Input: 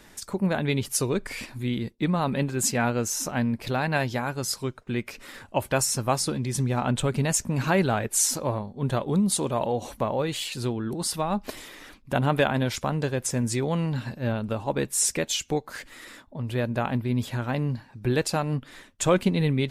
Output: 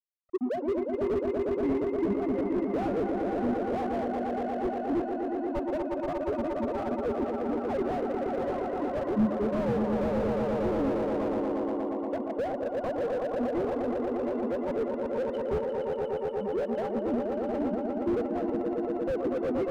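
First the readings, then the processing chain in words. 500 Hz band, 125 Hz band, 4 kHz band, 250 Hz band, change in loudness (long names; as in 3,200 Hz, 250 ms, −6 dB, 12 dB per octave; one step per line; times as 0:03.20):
+1.0 dB, −14.5 dB, below −15 dB, −1.5 dB, −3.5 dB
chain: three sine waves on the formant tracks
high-pass filter 320 Hz 12 dB per octave
in parallel at 0 dB: downward compressor 4 to 1, threshold −35 dBFS, peak gain reduction 18 dB
on the sum: spectral peaks only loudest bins 8
rotating-speaker cabinet horn 1 Hz
dead-zone distortion −38.5 dBFS
Savitzky-Golay smoothing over 65 samples
on a send: echo that builds up and dies away 118 ms, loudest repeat 5, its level −7 dB
on the sum: slew-rate limiting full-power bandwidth 23 Hz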